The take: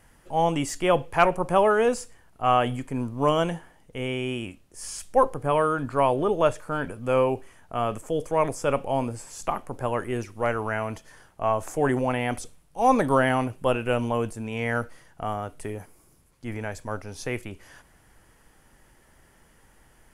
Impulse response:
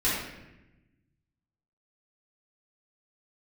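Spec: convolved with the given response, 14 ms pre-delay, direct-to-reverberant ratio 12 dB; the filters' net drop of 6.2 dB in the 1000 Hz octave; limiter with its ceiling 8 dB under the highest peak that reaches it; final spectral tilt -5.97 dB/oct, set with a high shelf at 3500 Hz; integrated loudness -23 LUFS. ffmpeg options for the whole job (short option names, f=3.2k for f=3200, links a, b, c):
-filter_complex "[0:a]equalizer=f=1k:t=o:g=-8,highshelf=f=3.5k:g=-5.5,alimiter=limit=-18.5dB:level=0:latency=1,asplit=2[a][b];[1:a]atrim=start_sample=2205,adelay=14[c];[b][c]afir=irnorm=-1:irlink=0,volume=-23.5dB[d];[a][d]amix=inputs=2:normalize=0,volume=7.5dB"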